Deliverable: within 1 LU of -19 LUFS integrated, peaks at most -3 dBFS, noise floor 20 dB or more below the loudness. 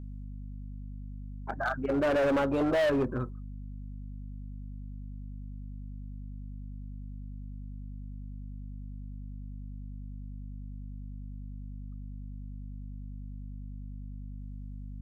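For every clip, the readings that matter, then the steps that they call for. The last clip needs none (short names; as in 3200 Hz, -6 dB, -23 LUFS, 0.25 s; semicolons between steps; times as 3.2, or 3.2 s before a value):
clipped 1.9%; flat tops at -23.5 dBFS; hum 50 Hz; harmonics up to 250 Hz; hum level -39 dBFS; loudness -36.5 LUFS; peak -23.5 dBFS; loudness target -19.0 LUFS
-> clip repair -23.5 dBFS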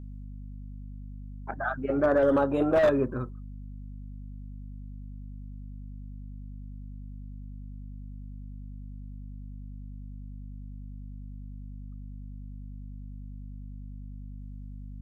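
clipped 0.0%; hum 50 Hz; harmonics up to 250 Hz; hum level -38 dBFS
-> de-hum 50 Hz, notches 5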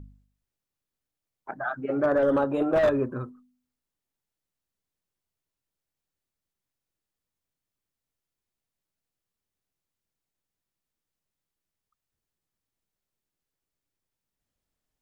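hum none; loudness -25.0 LUFS; peak -14.0 dBFS; loudness target -19.0 LUFS
-> gain +6 dB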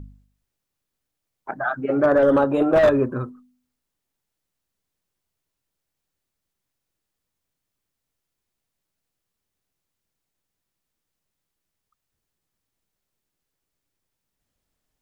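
loudness -19.0 LUFS; peak -7.5 dBFS; noise floor -82 dBFS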